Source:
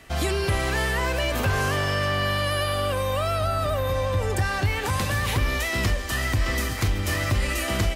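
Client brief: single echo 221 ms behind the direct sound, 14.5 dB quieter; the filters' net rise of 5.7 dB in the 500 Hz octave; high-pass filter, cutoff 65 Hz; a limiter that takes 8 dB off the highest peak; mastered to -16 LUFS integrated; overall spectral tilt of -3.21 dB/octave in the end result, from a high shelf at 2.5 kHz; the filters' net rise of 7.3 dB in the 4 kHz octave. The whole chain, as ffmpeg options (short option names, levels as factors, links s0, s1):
-af "highpass=65,equalizer=f=500:t=o:g=6.5,highshelf=f=2500:g=6.5,equalizer=f=4000:t=o:g=4,alimiter=limit=0.178:level=0:latency=1,aecho=1:1:221:0.188,volume=2.24"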